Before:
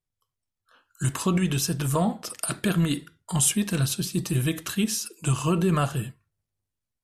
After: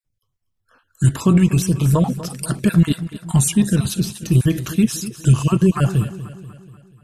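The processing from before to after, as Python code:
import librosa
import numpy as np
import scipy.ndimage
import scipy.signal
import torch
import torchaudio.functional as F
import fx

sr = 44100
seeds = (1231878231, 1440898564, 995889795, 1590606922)

y = fx.spec_dropout(x, sr, seeds[0], share_pct=27)
y = fx.low_shelf(y, sr, hz=320.0, db=10.5)
y = fx.echo_feedback(y, sr, ms=242, feedback_pct=52, wet_db=-14.5)
y = y * librosa.db_to_amplitude(2.5)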